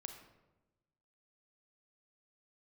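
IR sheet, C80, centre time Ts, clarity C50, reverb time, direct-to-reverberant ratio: 9.0 dB, 24 ms, 6.5 dB, 1.1 s, 5.0 dB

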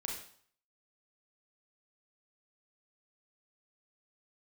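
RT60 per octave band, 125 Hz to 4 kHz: 0.55 s, 0.55 s, 0.50 s, 0.55 s, 0.50 s, 0.50 s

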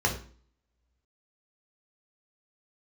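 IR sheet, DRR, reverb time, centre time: 0.0 dB, 0.45 s, 17 ms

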